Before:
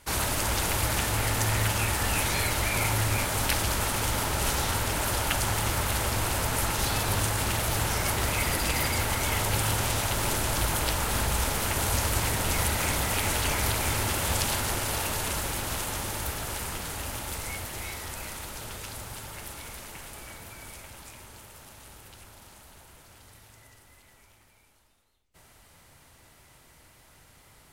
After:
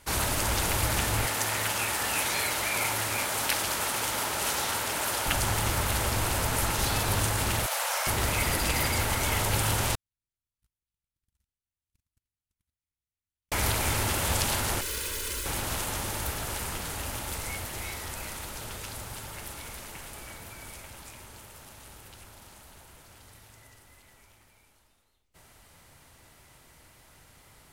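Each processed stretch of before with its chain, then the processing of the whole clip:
0:01.26–0:05.26: log-companded quantiser 8 bits + high-pass filter 430 Hz 6 dB per octave
0:07.66–0:08.07: elliptic high-pass filter 530 Hz + flutter between parallel walls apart 9.3 metres, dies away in 0.47 s
0:09.95–0:13.52: guitar amp tone stack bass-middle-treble 6-0-2 + leveller curve on the samples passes 2 + noise gate −29 dBFS, range −60 dB
0:14.81–0:15.46: lower of the sound and its delayed copy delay 2 ms + phaser with its sweep stopped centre 310 Hz, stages 4
whole clip: no processing

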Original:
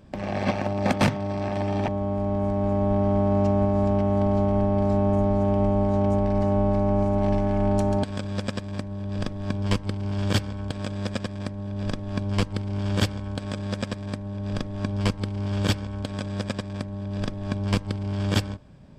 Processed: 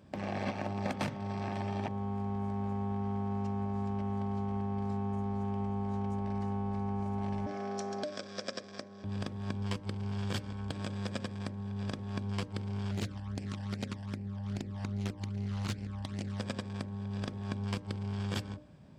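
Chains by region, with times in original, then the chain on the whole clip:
0:07.46–0:09.04: loudspeaker in its box 350–7,600 Hz, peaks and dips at 600 Hz +5 dB, 890 Hz −6 dB, 2,800 Hz −5 dB, 5,500 Hz +9 dB + notch filter 890 Hz, Q 9.1
0:12.91–0:16.40: all-pass phaser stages 12, 2.5 Hz, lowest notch 380–1,200 Hz + highs frequency-modulated by the lows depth 0.98 ms
whole clip: high-pass filter 78 Hz; mains-hum notches 60/120/180/240/300/360/420/480/540/600 Hz; downward compressor, threshold −26 dBFS; level −5 dB

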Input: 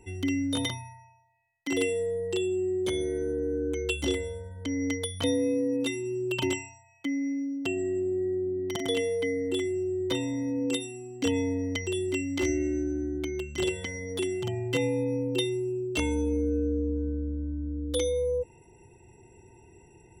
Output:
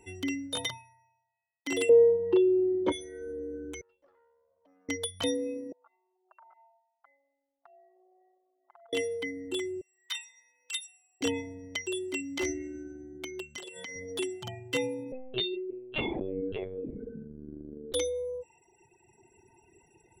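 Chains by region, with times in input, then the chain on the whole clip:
0:01.89–0:02.92: low-pass filter 2,000 Hz + low-shelf EQ 73 Hz +8 dB + hollow resonant body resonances 310/490/930 Hz, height 16 dB, ringing for 30 ms
0:03.81–0:04.89: resonant band-pass 550 Hz, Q 5.2 + downward compressor 2 to 1, threshold −55 dBFS + tube saturation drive 51 dB, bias 0.55
0:05.72–0:08.93: Chebyshev band-pass filter 660–1,400 Hz, order 3 + downward compressor 5 to 1, threshold −53 dBFS
0:09.81–0:11.21: high-pass filter 1,300 Hz 24 dB per octave + upward compression, threshold −54 dBFS
0:13.56–0:13.96: high-pass filter 130 Hz + downward compressor 8 to 1, threshold −34 dBFS
0:15.12–0:17.94: single-tap delay 577 ms −12.5 dB + linear-prediction vocoder at 8 kHz pitch kept
whole clip: reverb reduction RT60 2 s; low-shelf EQ 210 Hz −10.5 dB

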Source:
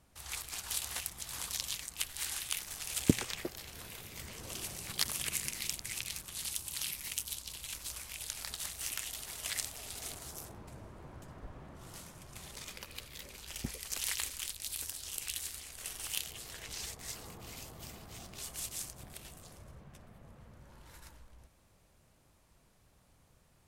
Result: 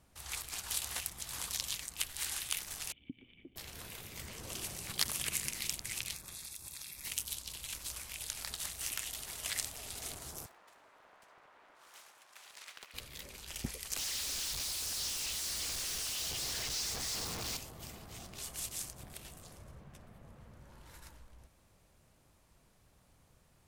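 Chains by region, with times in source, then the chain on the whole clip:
0:02.92–0:03.56: downward compressor 3 to 1, threshold −38 dBFS + formant resonators in series i
0:06.14–0:07.05: Butterworth band-reject 3,000 Hz, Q 6.1 + downward compressor, threshold −42 dBFS
0:10.46–0:12.94: high-pass filter 1,000 Hz + high-shelf EQ 3,800 Hz −7.5 dB + highs frequency-modulated by the lows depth 0.6 ms
0:13.98–0:17.57: sign of each sample alone + parametric band 5,100 Hz +9.5 dB 1.1 octaves
whole clip: no processing

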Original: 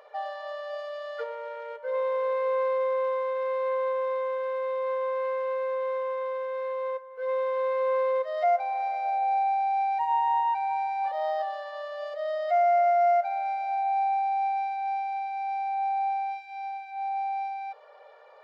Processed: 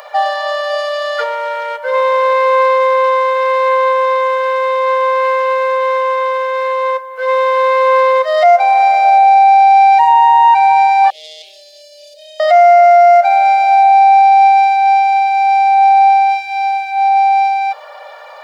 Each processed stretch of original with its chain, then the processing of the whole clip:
0:11.10–0:12.40: parametric band 3,000 Hz −13 dB 1 octave + tube saturation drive 31 dB, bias 0.35 + elliptic band-stop filter 390–3,300 Hz, stop band 70 dB
whole clip: Butterworth high-pass 580 Hz 36 dB per octave; high-shelf EQ 4,400 Hz +11.5 dB; boost into a limiter +20.5 dB; level −1 dB

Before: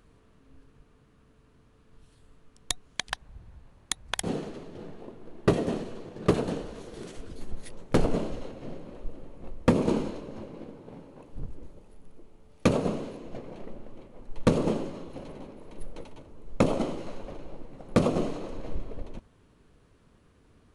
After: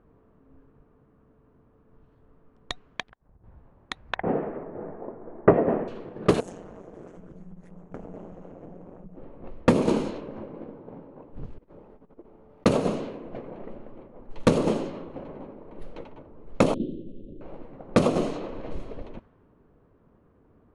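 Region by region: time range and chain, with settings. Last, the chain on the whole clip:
0:03.03–0:03.44: mu-law and A-law mismatch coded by A + parametric band 8,600 Hz −9 dB 2.8 octaves + downward compressor 12 to 1, threshold −50 dBFS
0:04.15–0:05.88: Butterworth low-pass 2,100 Hz + parametric band 680 Hz +6.5 dB 1.4 octaves
0:06.40–0:09.17: high shelf with overshoot 5,400 Hz +9 dB, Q 3 + amplitude modulation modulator 180 Hz, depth 85% + downward compressor 4 to 1, threshold −39 dBFS
0:11.58–0:12.66: compressor whose output falls as the input rises −45 dBFS, ratio −0.5 + low-shelf EQ 120 Hz −9 dB
0:16.74–0:17.41: variable-slope delta modulation 16 kbit/s + inverse Chebyshev band-stop filter 780–2,200 Hz, stop band 50 dB + parametric band 450 Hz −6 dB 0.23 octaves
whole clip: low-pass that shuts in the quiet parts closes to 960 Hz, open at −22.5 dBFS; low-shelf EQ 130 Hz −7.5 dB; level +4 dB

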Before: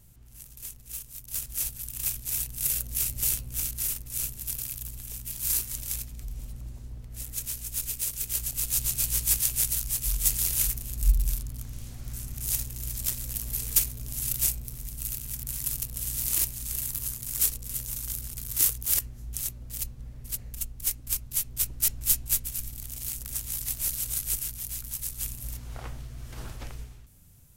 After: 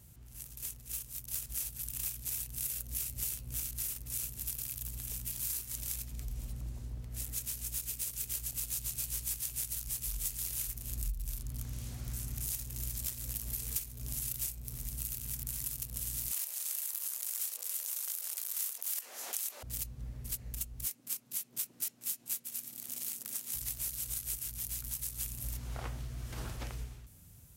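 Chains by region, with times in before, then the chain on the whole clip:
0:16.31–0:19.63: high-pass filter 570 Hz 24 dB per octave + envelope flattener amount 50%
0:20.86–0:23.54: high-pass filter 190 Hz 24 dB per octave + shaped tremolo saw down 1.5 Hz, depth 35%
whole clip: high-pass filter 43 Hz 24 dB per octave; downward compressor 6 to 1, threshold −34 dBFS

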